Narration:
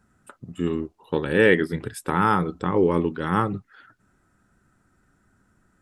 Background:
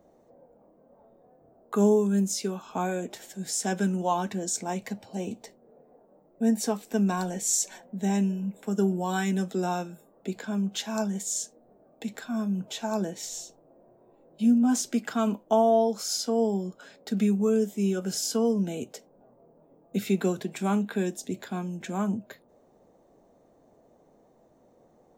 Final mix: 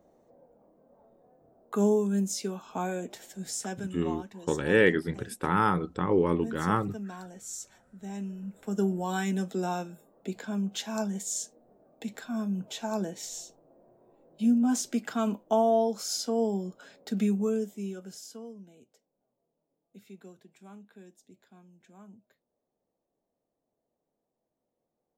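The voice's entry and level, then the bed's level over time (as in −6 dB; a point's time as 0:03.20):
3.35 s, −4.5 dB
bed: 0:03.45 −3 dB
0:04.04 −14 dB
0:08.04 −14 dB
0:08.76 −2.5 dB
0:17.37 −2.5 dB
0:18.73 −23.5 dB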